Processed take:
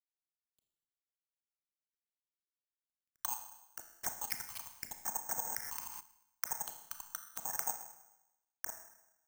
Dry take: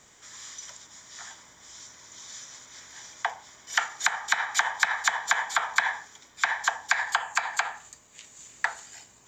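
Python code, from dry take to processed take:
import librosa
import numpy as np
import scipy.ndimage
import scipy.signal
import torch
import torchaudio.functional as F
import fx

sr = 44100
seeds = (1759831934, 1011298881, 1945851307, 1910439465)

y = fx.wiener(x, sr, points=15)
y = fx.env_lowpass_down(y, sr, base_hz=480.0, full_db=-25.0)
y = fx.level_steps(y, sr, step_db=22)
y = fx.rotary(y, sr, hz=0.9)
y = np.sign(y) * np.maximum(np.abs(y) - 10.0 ** (-56.0 / 20.0), 0.0)
y = fx.phaser_stages(y, sr, stages=6, low_hz=460.0, high_hz=4400.0, hz=0.82, feedback_pct=50)
y = fx.rev_schroeder(y, sr, rt60_s=0.92, comb_ms=26, drr_db=6.5)
y = (np.kron(scipy.signal.resample_poly(y, 1, 6), np.eye(6)[0]) * 6)[:len(y)]
y = fx.pre_swell(y, sr, db_per_s=25.0, at=(5.36, 5.99), fade=0.02)
y = y * librosa.db_to_amplitude(7.5)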